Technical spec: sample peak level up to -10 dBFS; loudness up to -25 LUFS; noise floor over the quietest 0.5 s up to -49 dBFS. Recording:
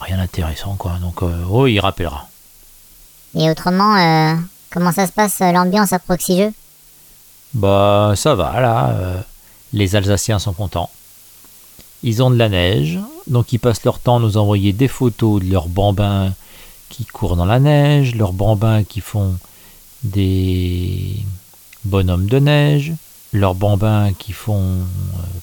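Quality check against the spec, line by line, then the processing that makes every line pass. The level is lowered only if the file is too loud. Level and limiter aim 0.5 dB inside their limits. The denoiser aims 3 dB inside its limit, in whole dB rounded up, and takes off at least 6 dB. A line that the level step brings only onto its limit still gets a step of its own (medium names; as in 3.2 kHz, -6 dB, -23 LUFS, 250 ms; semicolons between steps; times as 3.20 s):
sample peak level -1.5 dBFS: fail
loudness -16.0 LUFS: fail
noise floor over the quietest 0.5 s -45 dBFS: fail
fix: trim -9.5 dB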